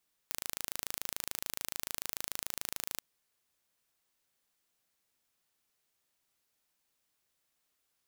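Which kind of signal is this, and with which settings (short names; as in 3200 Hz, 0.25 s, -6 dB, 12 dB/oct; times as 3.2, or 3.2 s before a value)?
pulse train 26.9/s, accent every 0, -8.5 dBFS 2.71 s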